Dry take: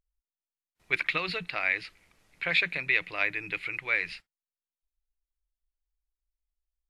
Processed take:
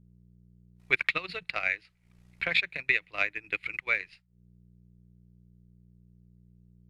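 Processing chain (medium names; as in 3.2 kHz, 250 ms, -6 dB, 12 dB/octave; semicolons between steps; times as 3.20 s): mains buzz 60 Hz, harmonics 3, -54 dBFS -1 dB/octave; transient shaper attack +8 dB, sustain -12 dB; trim -5 dB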